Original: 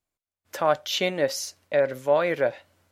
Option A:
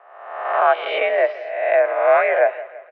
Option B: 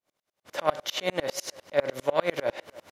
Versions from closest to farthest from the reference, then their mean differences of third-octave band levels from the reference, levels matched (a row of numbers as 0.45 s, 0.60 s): B, A; 7.0 dB, 11.5 dB